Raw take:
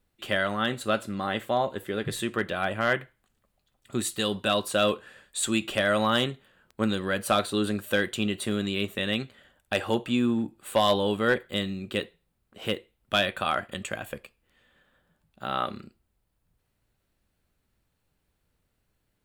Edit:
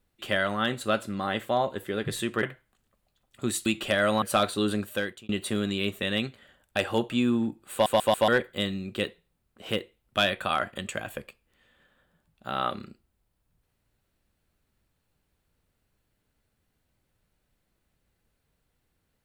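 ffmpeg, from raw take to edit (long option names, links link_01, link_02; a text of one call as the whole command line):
ffmpeg -i in.wav -filter_complex "[0:a]asplit=9[link_01][link_02][link_03][link_04][link_05][link_06][link_07][link_08][link_09];[link_01]atrim=end=2.432[link_10];[link_02]atrim=start=2.938:end=4.172[link_11];[link_03]atrim=start=5.528:end=6.092[link_12];[link_04]atrim=start=7.178:end=8.25,asetpts=PTS-STARTPTS,afade=type=out:start_time=0.582:duration=0.49[link_13];[link_05]atrim=start=8.25:end=10.822,asetpts=PTS-STARTPTS,afade=type=in:duration=0.004:curve=hsin[link_14];[link_06]atrim=start=10.678:end=10.822[link_15];[link_07]atrim=start=10.678:end=10.822[link_16];[link_08]atrim=start=10.678:end=10.822[link_17];[link_09]atrim=start=11.238[link_18];[link_10][link_11]acrossfade=duration=0.004:curve1=hsin:curve2=hsin[link_19];[link_19][link_12]acrossfade=duration=0.004:curve1=hsin:curve2=hsin[link_20];[link_13][link_14]concat=n=2:v=0:a=1[link_21];[link_20][link_21]acrossfade=duration=0.004:curve1=hsin:curve2=hsin[link_22];[link_22][link_15]acrossfade=duration=0.004:curve1=hsin:curve2=hsin[link_23];[link_23][link_16]acrossfade=duration=0.004:curve1=hsin:curve2=hsin[link_24];[link_24][link_17]acrossfade=duration=0.004:curve1=hsin:curve2=hsin[link_25];[link_25][link_18]acrossfade=duration=0.004:curve1=hsin:curve2=hsin" out.wav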